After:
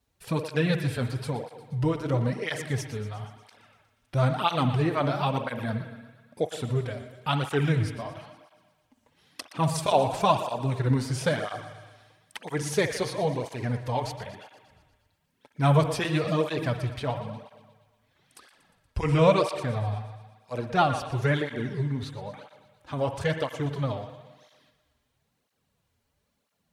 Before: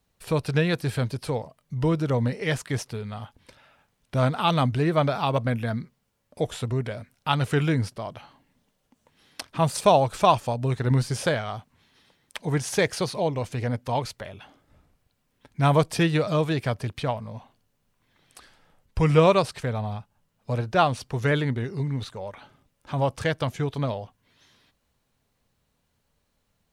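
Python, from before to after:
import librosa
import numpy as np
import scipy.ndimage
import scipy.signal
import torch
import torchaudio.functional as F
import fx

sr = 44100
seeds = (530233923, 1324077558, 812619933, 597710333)

y = fx.echo_thinned(x, sr, ms=119, feedback_pct=63, hz=450.0, wet_db=-14)
y = fx.rev_spring(y, sr, rt60_s=1.2, pass_ms=(56,), chirp_ms=80, drr_db=8.5)
y = fx.flanger_cancel(y, sr, hz=1.0, depth_ms=6.5)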